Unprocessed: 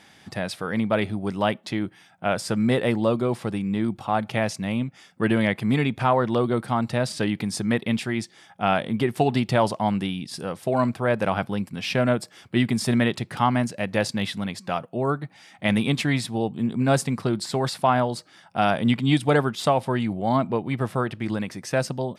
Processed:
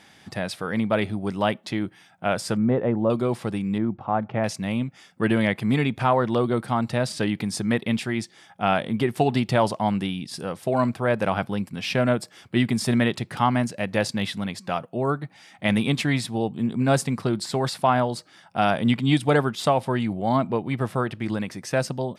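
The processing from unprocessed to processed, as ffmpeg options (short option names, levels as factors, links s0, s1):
-filter_complex "[0:a]asettb=1/sr,asplit=3[s0][s1][s2];[s0]atrim=end=2.574[s3];[s1]atrim=start=2.57:end=3.1,asetpts=PTS-STARTPTS,afade=t=in:d=0.004:c=qsin,afade=t=out:st=0.526:d=0.004:c=qsin,lowpass=1100[s4];[s2]atrim=start=3.096[s5];[s3][s4]acrossfade=d=0.004:c1=hsin:c2=qsin[s6];[s6][s5]acrossfade=d=0.004:c1=qsin:c2=hsin,asettb=1/sr,asplit=3[s7][s8][s9];[s7]atrim=end=3.784[s10];[s8]atrim=start=3.78:end=4.44,asetpts=PTS-STARTPTS,afade=t=in:d=0.004:c=qsin,afade=t=out:st=0.656:d=0.004:c=qsin,lowpass=1400[s11];[s9]atrim=start=4.436[s12];[s10][s11]acrossfade=d=0.004:c1=hsin:c2=qsin[s13];[s13][s12]acrossfade=d=0.004:c1=qsin:c2=hsin"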